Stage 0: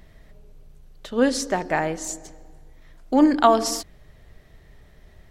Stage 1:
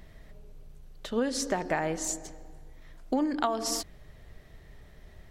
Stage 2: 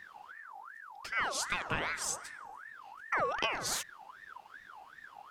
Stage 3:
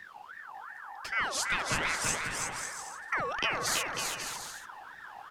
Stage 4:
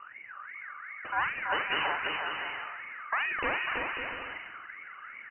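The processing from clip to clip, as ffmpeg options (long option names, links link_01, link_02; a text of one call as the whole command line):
ffmpeg -i in.wav -af "acompressor=threshold=-23dB:ratio=12,volume=-1dB" out.wav
ffmpeg -i in.wav -af "equalizer=frequency=540:width=1.4:gain=-5.5,aeval=exprs='val(0)*sin(2*PI*1300*n/s+1300*0.4/2.6*sin(2*PI*2.6*n/s))':channel_layout=same" out.wav
ffmpeg -i in.wav -filter_complex "[0:a]acrossover=split=340|1400|4700[link_01][link_02][link_03][link_04];[link_02]alimiter=level_in=11dB:limit=-24dB:level=0:latency=1,volume=-11dB[link_05];[link_01][link_05][link_03][link_04]amix=inputs=4:normalize=0,aecho=1:1:330|544.5|683.9|774.6|833.5:0.631|0.398|0.251|0.158|0.1,volume=3dB" out.wav
ffmpeg -i in.wav -filter_complex "[0:a]asplit=2[link_01][link_02];[link_02]adelay=45,volume=-8dB[link_03];[link_01][link_03]amix=inputs=2:normalize=0,lowpass=frequency=2600:width_type=q:width=0.5098,lowpass=frequency=2600:width_type=q:width=0.6013,lowpass=frequency=2600:width_type=q:width=0.9,lowpass=frequency=2600:width_type=q:width=2.563,afreqshift=-3000,volume=1dB" out.wav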